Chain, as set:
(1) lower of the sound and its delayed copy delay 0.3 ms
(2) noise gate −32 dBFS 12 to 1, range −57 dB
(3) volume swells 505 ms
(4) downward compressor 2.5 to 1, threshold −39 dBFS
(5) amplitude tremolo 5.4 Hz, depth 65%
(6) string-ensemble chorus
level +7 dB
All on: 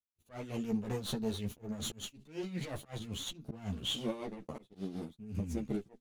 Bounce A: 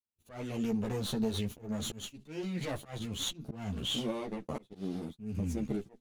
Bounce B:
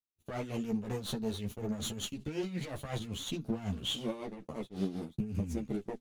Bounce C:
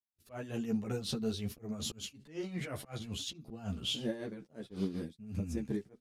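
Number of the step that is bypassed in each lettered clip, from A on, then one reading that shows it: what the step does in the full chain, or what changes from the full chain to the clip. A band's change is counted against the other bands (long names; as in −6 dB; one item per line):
5, change in crest factor −2.0 dB
3, 4 kHz band −1.5 dB
1, 1 kHz band −3.5 dB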